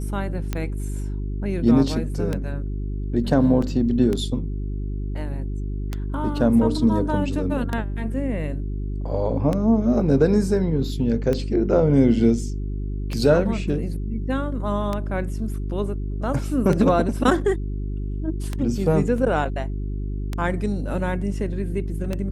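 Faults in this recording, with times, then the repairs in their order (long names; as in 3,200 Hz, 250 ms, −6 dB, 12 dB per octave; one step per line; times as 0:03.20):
mains hum 50 Hz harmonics 8 −27 dBFS
scratch tick 33 1/3 rpm −12 dBFS
0:03.62: drop-out 3.8 ms
0:19.18: drop-out 2.4 ms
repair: click removal
hum removal 50 Hz, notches 8
repair the gap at 0:03.62, 3.8 ms
repair the gap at 0:19.18, 2.4 ms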